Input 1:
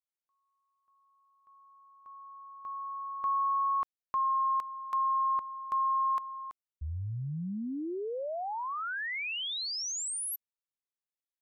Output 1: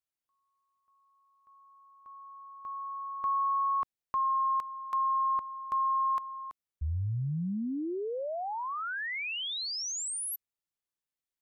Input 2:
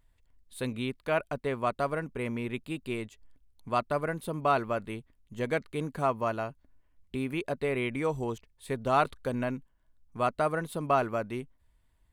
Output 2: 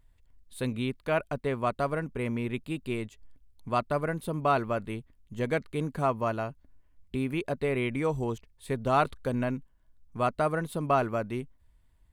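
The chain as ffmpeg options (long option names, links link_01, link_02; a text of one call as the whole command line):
ffmpeg -i in.wav -af "lowshelf=frequency=240:gain=5" out.wav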